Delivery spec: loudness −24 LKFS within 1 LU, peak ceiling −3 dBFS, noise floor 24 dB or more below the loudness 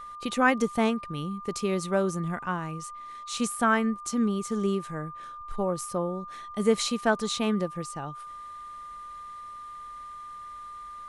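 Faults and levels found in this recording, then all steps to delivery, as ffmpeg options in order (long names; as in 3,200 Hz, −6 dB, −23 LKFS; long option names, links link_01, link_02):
interfering tone 1,200 Hz; level of the tone −39 dBFS; integrated loudness −28.5 LKFS; sample peak −8.0 dBFS; target loudness −24.0 LKFS
→ -af "bandreject=frequency=1200:width=30"
-af "volume=4.5dB"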